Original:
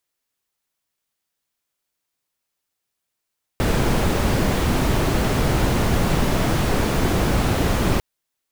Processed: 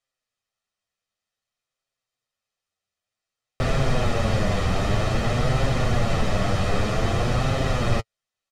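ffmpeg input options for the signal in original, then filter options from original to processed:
-f lavfi -i "anoisesrc=c=brown:a=0.556:d=4.4:r=44100:seed=1"
-af "lowpass=6500,aecho=1:1:1.6:0.48,flanger=delay=7.3:depth=3.2:regen=24:speed=0.53:shape=triangular"

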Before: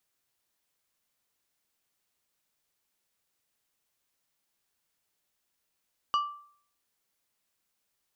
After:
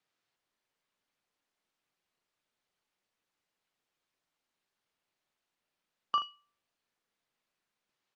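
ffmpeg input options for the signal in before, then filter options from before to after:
-f lavfi -i "aevalsrc='0.0891*pow(10,-3*t/0.55)*sin(2*PI*1170*t)+0.0299*pow(10,-3*t/0.29)*sin(2*PI*2925*t)+0.01*pow(10,-3*t/0.208)*sin(2*PI*4680*t)+0.00335*pow(10,-3*t/0.178)*sin(2*PI*5850*t)+0.00112*pow(10,-3*t/0.148)*sin(2*PI*7605*t)':d=0.89:s=44100"
-filter_complex "[0:a]highpass=120,lowpass=4100,asplit=2[s0][s1];[s1]aecho=0:1:39|79:0.422|0.237[s2];[s0][s2]amix=inputs=2:normalize=0" -ar 48000 -c:a libopus -b:a 48k

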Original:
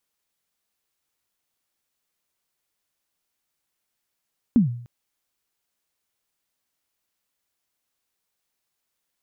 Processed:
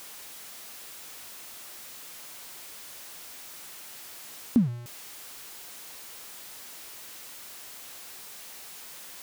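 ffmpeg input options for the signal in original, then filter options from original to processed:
-f lavfi -i "aevalsrc='0.316*pow(10,-3*t/0.58)*sin(2*PI*(260*0.128/log(120/260)*(exp(log(120/260)*min(t,0.128)/0.128)-1)+120*max(t-0.128,0)))':d=0.3:s=44100"
-af "aeval=exprs='val(0)+0.5*0.0126*sgn(val(0))':c=same,lowshelf=f=170:g=-8.5"

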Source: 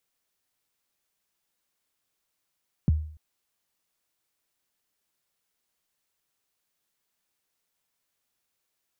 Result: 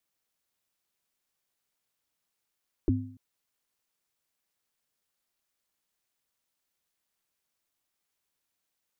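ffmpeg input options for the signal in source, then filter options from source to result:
-f lavfi -i "aevalsrc='0.178*pow(10,-3*t/0.53)*sin(2*PI*(220*0.02/log(77/220)*(exp(log(77/220)*min(t,0.02)/0.02)-1)+77*max(t-0.02,0)))':d=0.29:s=44100"
-af "aeval=exprs='val(0)*sin(2*PI*180*n/s)':c=same"

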